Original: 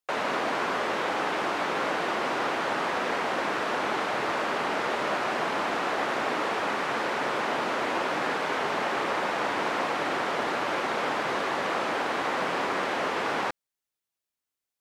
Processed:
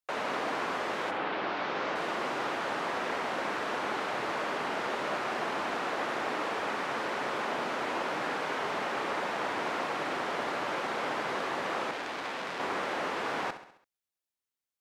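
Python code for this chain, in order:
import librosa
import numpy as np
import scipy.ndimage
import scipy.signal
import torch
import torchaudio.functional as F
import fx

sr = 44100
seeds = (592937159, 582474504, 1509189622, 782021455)

p1 = fx.lowpass(x, sr, hz=fx.line((1.1, 3600.0), (1.94, 6600.0)), slope=24, at=(1.1, 1.94), fade=0.02)
p2 = p1 + fx.echo_feedback(p1, sr, ms=67, feedback_pct=52, wet_db=-12.0, dry=0)
p3 = fx.transformer_sat(p2, sr, knee_hz=3000.0, at=(11.91, 12.6))
y = F.gain(torch.from_numpy(p3), -5.0).numpy()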